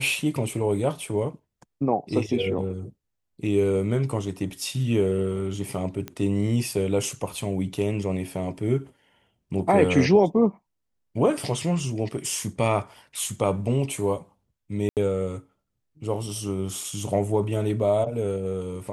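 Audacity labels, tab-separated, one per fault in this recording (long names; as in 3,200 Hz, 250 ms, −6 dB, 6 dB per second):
6.080000	6.080000	click −18 dBFS
14.890000	14.970000	drop-out 78 ms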